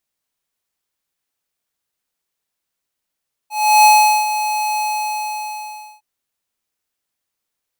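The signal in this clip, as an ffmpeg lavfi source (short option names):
-f lavfi -i "aevalsrc='0.398*(2*lt(mod(850*t,1),0.5)-1)':d=2.51:s=44100,afade=t=in:d=0.343,afade=t=out:st=0.343:d=0.412:silence=0.266,afade=t=out:st=1.29:d=1.22"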